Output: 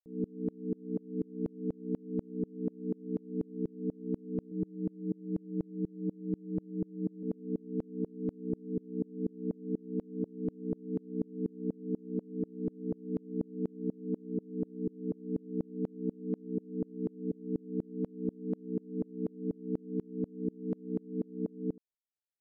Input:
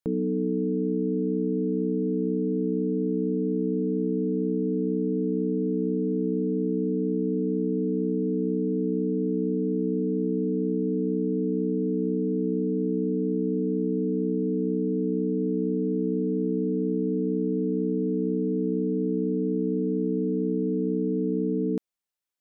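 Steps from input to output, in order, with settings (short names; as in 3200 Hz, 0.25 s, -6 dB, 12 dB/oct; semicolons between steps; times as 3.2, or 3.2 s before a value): Bessel low-pass 550 Hz, order 2; 4.51–7.23 comb 6 ms, depth 77%; vocal rider; dB-ramp tremolo swelling 4.1 Hz, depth 33 dB; gain -1.5 dB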